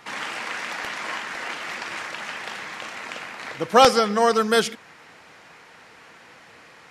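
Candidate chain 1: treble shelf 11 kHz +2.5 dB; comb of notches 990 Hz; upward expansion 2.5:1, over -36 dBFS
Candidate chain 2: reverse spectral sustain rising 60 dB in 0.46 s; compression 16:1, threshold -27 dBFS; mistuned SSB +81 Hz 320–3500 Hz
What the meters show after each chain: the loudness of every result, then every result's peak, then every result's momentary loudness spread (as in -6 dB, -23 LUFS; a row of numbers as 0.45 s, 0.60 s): -22.5 LUFS, -31.5 LUFS; -1.5 dBFS, -17.0 dBFS; 13 LU, 16 LU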